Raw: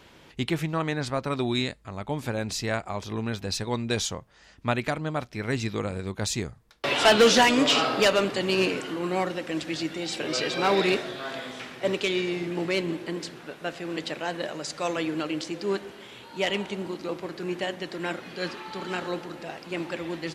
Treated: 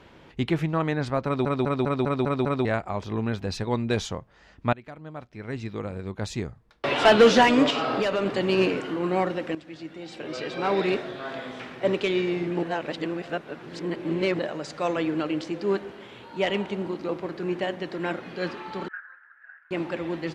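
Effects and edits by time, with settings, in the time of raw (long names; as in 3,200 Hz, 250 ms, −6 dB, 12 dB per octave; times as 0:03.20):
0:01.25: stutter in place 0.20 s, 7 plays
0:04.73–0:06.99: fade in, from −21 dB
0:07.70–0:08.26: downward compressor 5 to 1, threshold −23 dBFS
0:09.55–0:11.71: fade in, from −14.5 dB
0:12.63–0:14.39: reverse
0:18.88–0:19.71: flat-topped band-pass 1,600 Hz, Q 4.9
whole clip: low-pass filter 1,800 Hz 6 dB per octave; level +3 dB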